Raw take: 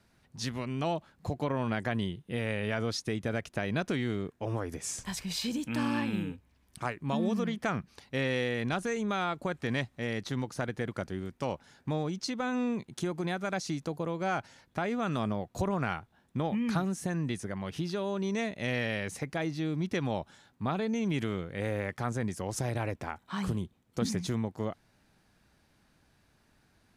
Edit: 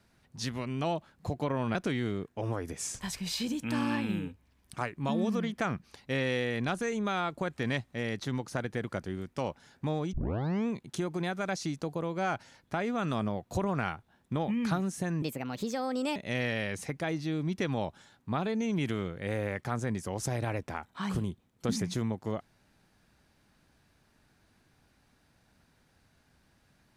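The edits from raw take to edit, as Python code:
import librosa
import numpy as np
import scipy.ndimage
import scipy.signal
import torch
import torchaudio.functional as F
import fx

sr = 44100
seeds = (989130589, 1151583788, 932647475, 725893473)

y = fx.edit(x, sr, fx.cut(start_s=1.75, length_s=2.04),
    fx.tape_start(start_s=12.17, length_s=0.54),
    fx.speed_span(start_s=17.26, length_s=1.23, speed=1.31), tone=tone)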